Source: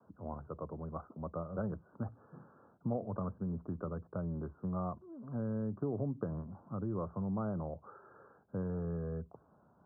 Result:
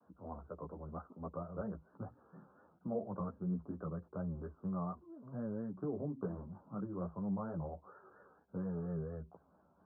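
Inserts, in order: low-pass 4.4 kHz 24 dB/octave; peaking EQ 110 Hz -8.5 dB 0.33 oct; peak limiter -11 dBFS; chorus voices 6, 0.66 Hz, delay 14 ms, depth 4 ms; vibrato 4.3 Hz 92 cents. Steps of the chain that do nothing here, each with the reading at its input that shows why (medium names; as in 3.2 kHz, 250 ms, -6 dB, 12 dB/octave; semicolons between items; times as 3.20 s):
low-pass 4.4 kHz: input has nothing above 1.4 kHz; peak limiter -11 dBFS: peak at its input -24.0 dBFS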